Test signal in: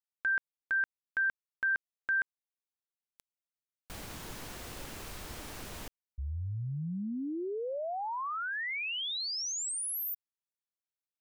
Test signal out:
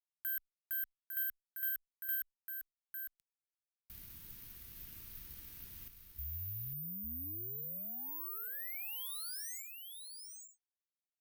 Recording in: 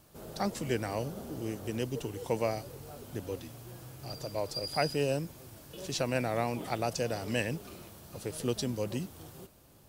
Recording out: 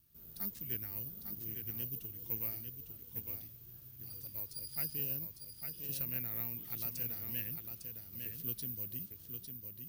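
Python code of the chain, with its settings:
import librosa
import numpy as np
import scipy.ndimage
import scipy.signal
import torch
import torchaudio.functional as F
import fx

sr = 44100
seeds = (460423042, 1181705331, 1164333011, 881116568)

p1 = fx.high_shelf(x, sr, hz=12000.0, db=-9.5)
p2 = p1 + fx.echo_single(p1, sr, ms=853, db=-6.0, dry=0)
p3 = (np.kron(scipy.signal.resample_poly(p2, 1, 3), np.eye(3)[0]) * 3)[:len(p2)]
p4 = fx.cheby_harmonics(p3, sr, harmonics=(6,), levels_db=(-30,), full_scale_db=-4.0)
p5 = fx.tone_stack(p4, sr, knobs='6-0-2')
y = F.gain(torch.from_numpy(p5), 2.5).numpy()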